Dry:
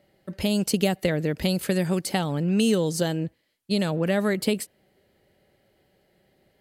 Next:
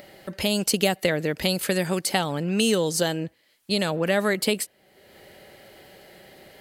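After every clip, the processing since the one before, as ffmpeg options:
-filter_complex "[0:a]lowshelf=f=350:g=-10.5,asplit=2[a][b];[b]acompressor=mode=upward:threshold=-30dB:ratio=2.5,volume=-2dB[c];[a][c]amix=inputs=2:normalize=0"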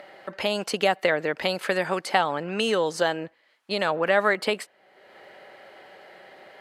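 -af "bandpass=f=1.1k:t=q:w=1:csg=0,volume=6.5dB"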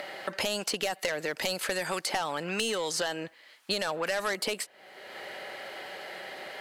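-filter_complex "[0:a]highshelf=f=2.4k:g=10,asoftclip=type=tanh:threshold=-14.5dB,acrossover=split=1000|5100[a][b][c];[a]acompressor=threshold=-38dB:ratio=4[d];[b]acompressor=threshold=-40dB:ratio=4[e];[c]acompressor=threshold=-41dB:ratio=4[f];[d][e][f]amix=inputs=3:normalize=0,volume=4.5dB"

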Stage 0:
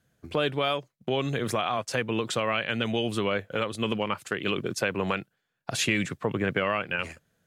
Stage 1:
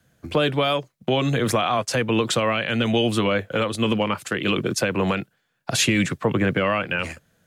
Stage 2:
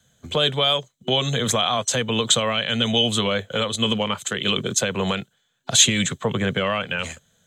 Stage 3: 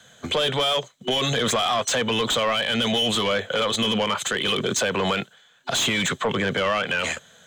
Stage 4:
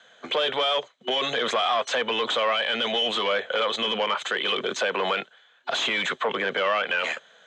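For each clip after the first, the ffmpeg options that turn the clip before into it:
-filter_complex "[0:a]bandreject=f=410:w=12,acrossover=split=190|450|4500[a][b][c][d];[c]alimiter=limit=-22dB:level=0:latency=1:release=29[e];[a][b][e][d]amix=inputs=4:normalize=0,volume=8dB"
-af "superequalizer=6b=0.398:13b=3.16:15b=3.55,volume=-1.5dB"
-filter_complex "[0:a]asplit=2[a][b];[b]highpass=f=720:p=1,volume=23dB,asoftclip=type=tanh:threshold=-1.5dB[c];[a][c]amix=inputs=2:normalize=0,lowpass=f=2.6k:p=1,volume=-6dB,alimiter=limit=-16dB:level=0:latency=1:release=70"
-af "highpass=410,lowpass=3.5k"

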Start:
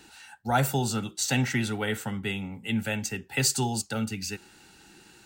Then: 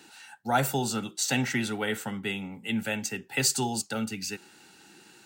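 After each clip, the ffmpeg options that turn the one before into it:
-af "highpass=160"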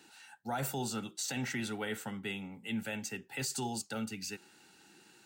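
-af "alimiter=limit=-20.5dB:level=0:latency=1:release=12,volume=-6.5dB"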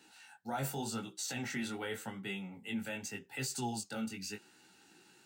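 -af "flanger=delay=15.5:depth=6.6:speed=0.86,volume=1dB"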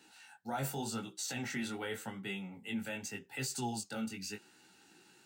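-af anull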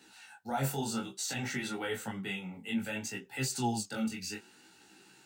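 -af "flanger=delay=15:depth=7.9:speed=0.59,volume=6.5dB"

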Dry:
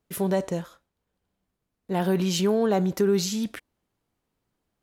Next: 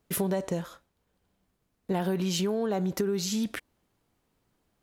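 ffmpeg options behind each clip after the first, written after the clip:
-af "acompressor=threshold=-31dB:ratio=6,volume=5dB"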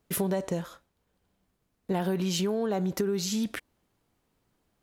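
-af anull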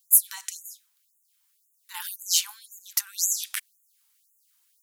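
-af "asubboost=boost=7:cutoff=250,crystalizer=i=9.5:c=0,afftfilt=real='re*gte(b*sr/1024,760*pow(6600/760,0.5+0.5*sin(2*PI*1.9*pts/sr)))':imag='im*gte(b*sr/1024,760*pow(6600/760,0.5+0.5*sin(2*PI*1.9*pts/sr)))':win_size=1024:overlap=0.75,volume=-6dB"

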